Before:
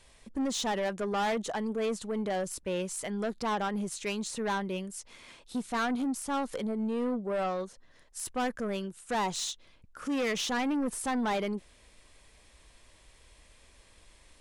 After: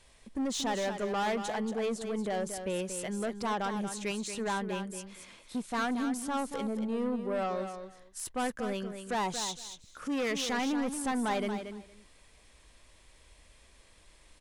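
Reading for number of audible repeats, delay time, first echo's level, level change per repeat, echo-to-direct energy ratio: 2, 231 ms, -8.5 dB, -16.0 dB, -8.5 dB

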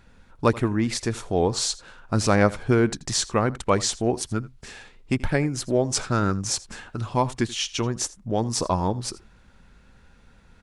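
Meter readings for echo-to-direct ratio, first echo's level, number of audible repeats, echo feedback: -20.0 dB, -20.0 dB, 1, no regular repeats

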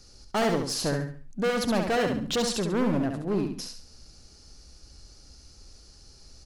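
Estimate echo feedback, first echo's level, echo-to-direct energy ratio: 34%, -5.5 dB, -5.0 dB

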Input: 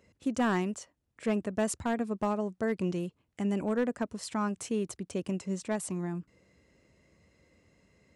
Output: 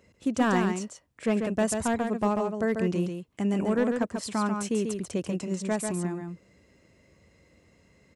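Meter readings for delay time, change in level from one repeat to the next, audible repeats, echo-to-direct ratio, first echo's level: 141 ms, no regular repeats, 1, -5.5 dB, -5.5 dB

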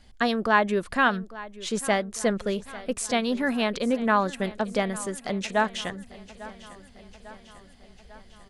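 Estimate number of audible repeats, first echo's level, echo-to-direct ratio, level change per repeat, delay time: 4, -18.0 dB, -16.0 dB, -4.5 dB, 848 ms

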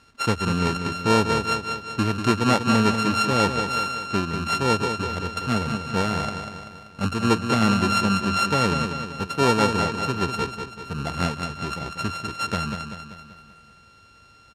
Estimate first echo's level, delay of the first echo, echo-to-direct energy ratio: -7.5 dB, 193 ms, -6.0 dB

